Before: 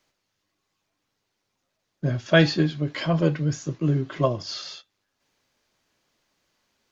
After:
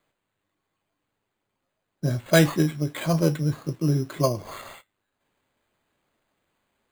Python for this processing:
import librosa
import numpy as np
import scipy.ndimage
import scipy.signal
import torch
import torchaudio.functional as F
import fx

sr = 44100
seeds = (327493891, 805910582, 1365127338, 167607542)

y = fx.high_shelf(x, sr, hz=3200.0, db=-7.5)
y = np.repeat(y[::8], 8)[:len(y)]